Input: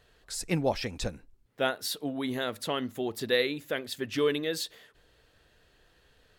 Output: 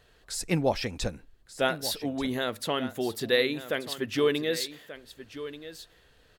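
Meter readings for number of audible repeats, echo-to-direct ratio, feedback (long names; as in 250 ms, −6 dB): 1, −13.5 dB, repeats not evenly spaced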